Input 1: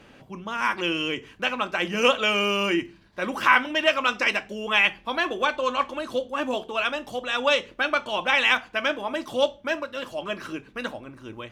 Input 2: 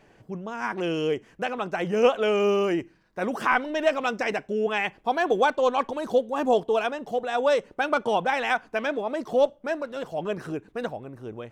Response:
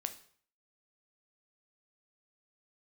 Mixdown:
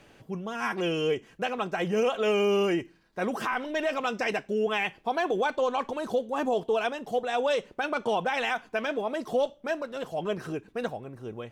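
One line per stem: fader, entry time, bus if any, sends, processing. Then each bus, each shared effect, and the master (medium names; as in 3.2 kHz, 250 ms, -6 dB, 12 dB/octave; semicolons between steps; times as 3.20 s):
-8.5 dB, 0.00 s, no send, treble shelf 4.6 kHz +11 dB; auto duck -7 dB, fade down 1.40 s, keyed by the second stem
-1.5 dB, 0.00 s, no send, none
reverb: none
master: peak limiter -18 dBFS, peak gain reduction 10 dB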